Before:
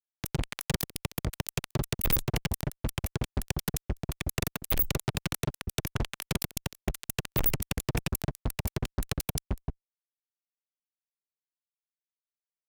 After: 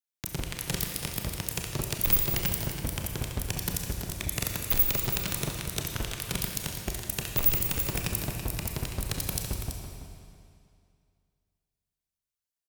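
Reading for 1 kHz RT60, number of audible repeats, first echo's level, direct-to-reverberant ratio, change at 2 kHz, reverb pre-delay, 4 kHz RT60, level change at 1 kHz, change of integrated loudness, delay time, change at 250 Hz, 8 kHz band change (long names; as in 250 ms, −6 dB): 2.3 s, 1, −9.5 dB, 1.0 dB, +1.0 dB, 28 ms, 2.1 s, 0.0 dB, +3.5 dB, 331 ms, −1.0 dB, +5.0 dB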